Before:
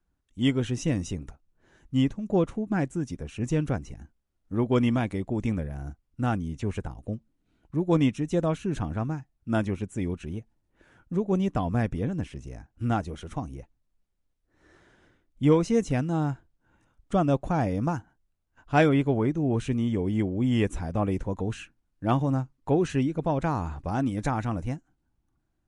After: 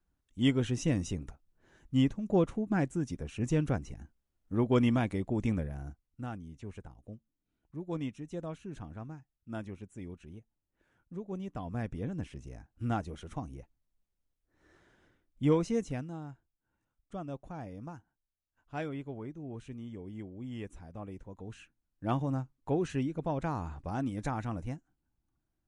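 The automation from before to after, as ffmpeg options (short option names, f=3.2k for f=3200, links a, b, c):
-af "volume=15dB,afade=t=out:st=5.59:d=0.7:silence=0.281838,afade=t=in:st=11.49:d=0.81:silence=0.398107,afade=t=out:st=15.62:d=0.59:silence=0.281838,afade=t=in:st=21.36:d=0.71:silence=0.316228"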